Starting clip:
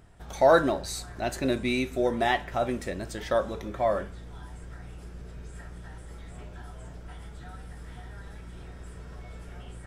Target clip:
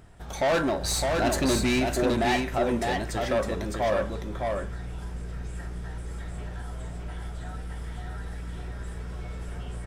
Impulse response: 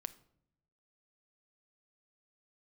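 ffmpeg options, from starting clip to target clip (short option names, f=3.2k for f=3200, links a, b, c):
-filter_complex "[0:a]asettb=1/sr,asplit=3[a][b][c];[a]atrim=end=0.844[d];[b]atrim=start=0.84:end=1.8,asetpts=PTS-STARTPTS,afade=t=in:d=0.004:c=qsin,afade=t=out:st=0.956:d=0.004:c=qsin,acontrast=35[e];[c]atrim=start=1.796[f];[d][e]acrossfade=d=0.004:c1=hsin:c2=qsin[g];[g][f]acrossfade=d=0.004:c1=qsin:c2=hsin,asoftclip=type=tanh:threshold=-24dB,aecho=1:1:610:0.668,volume=3.5dB"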